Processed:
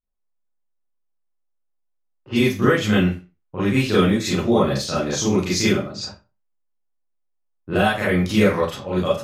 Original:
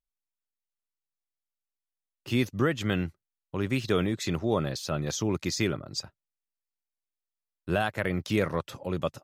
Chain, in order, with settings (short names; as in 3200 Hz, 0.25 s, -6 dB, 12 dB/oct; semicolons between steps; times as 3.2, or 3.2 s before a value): Schroeder reverb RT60 0.31 s, combs from 30 ms, DRR -9 dB; low-pass opened by the level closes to 1000 Hz, open at -18 dBFS